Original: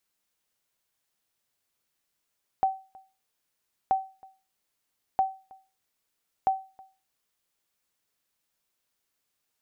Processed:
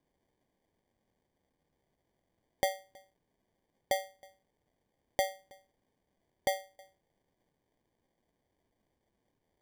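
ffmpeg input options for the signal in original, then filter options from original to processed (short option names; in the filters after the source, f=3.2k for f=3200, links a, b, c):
-f lavfi -i "aevalsrc='0.158*(sin(2*PI*767*mod(t,1.28))*exp(-6.91*mod(t,1.28)/0.33)+0.0531*sin(2*PI*767*max(mod(t,1.28)-0.32,0))*exp(-6.91*max(mod(t,1.28)-0.32,0)/0.33))':d=5.12:s=44100"
-af "equalizer=f=700:w=1.5:g=-5,acrusher=samples=33:mix=1:aa=0.000001"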